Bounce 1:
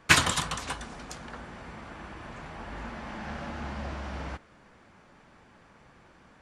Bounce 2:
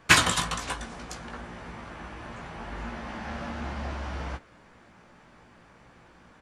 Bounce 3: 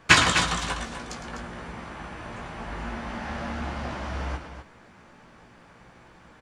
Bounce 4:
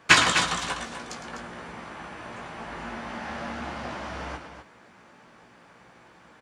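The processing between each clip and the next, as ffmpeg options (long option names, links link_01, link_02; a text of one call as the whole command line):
ffmpeg -i in.wav -filter_complex "[0:a]asplit=2[link_01][link_02];[link_02]adelay=17,volume=-6.5dB[link_03];[link_01][link_03]amix=inputs=2:normalize=0,volume=1dB" out.wav
ffmpeg -i in.wav -filter_complex "[0:a]acrossover=split=8500[link_01][link_02];[link_02]acompressor=threshold=-56dB:ratio=4:attack=1:release=60[link_03];[link_01][link_03]amix=inputs=2:normalize=0,asplit=2[link_04][link_05];[link_05]aecho=0:1:107.9|250.7:0.316|0.355[link_06];[link_04][link_06]amix=inputs=2:normalize=0,volume=2dB" out.wav
ffmpeg -i in.wav -af "highpass=frequency=210:poles=1" out.wav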